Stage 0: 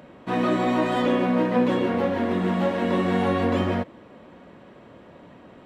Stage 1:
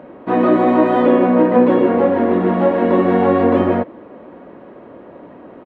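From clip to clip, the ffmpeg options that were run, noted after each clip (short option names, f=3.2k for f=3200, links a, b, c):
-af "firequalizer=gain_entry='entry(140,0);entry(300,10);entry(3200,-5);entry(5900,-14)':delay=0.05:min_phase=1,volume=1.5dB"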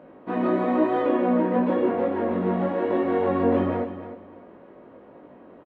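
-af "flanger=delay=18.5:depth=3:speed=0.99,aecho=1:1:303|606|909:0.251|0.0553|0.0122,volume=-6.5dB"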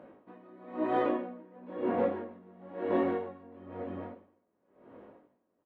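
-af "flanger=delay=9:depth=1.6:regen=-68:speed=0.93:shape=triangular,aeval=exprs='val(0)*pow(10,-28*(0.5-0.5*cos(2*PI*1*n/s))/20)':c=same,volume=1dB"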